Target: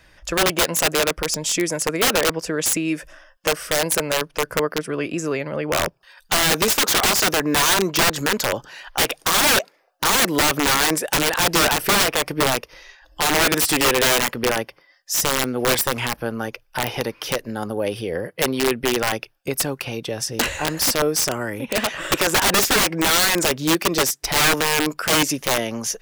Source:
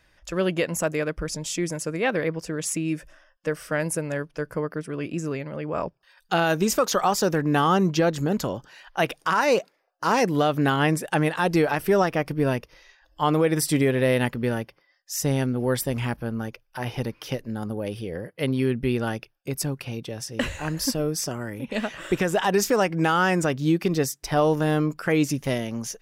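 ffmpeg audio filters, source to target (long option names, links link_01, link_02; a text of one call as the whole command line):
ffmpeg -i in.wav -filter_complex "[0:a]acrossover=split=340[link_01][link_02];[link_01]acompressor=threshold=-40dB:ratio=8[link_03];[link_03][link_02]amix=inputs=2:normalize=0,aeval=exprs='(mod(10.6*val(0)+1,2)-1)/10.6':channel_layout=same,volume=9dB" out.wav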